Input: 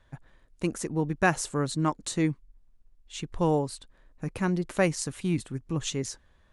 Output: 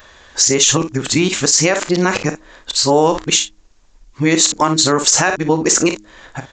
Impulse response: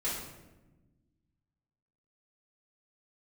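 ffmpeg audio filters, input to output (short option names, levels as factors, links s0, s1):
-filter_complex "[0:a]areverse,equalizer=f=180:t=o:w=0.8:g=-6,asplit=2[s0][s1];[s1]aecho=0:1:32|56:0.211|0.237[s2];[s0][s2]amix=inputs=2:normalize=0,acompressor=threshold=0.0282:ratio=3,aresample=16000,aresample=44100,aemphasis=mode=production:type=bsi,bandreject=f=104.8:t=h:w=4,bandreject=f=209.6:t=h:w=4,bandreject=f=314.4:t=h:w=4,bandreject=f=419.2:t=h:w=4,alimiter=level_in=16.8:limit=0.891:release=50:level=0:latency=1,volume=0.891"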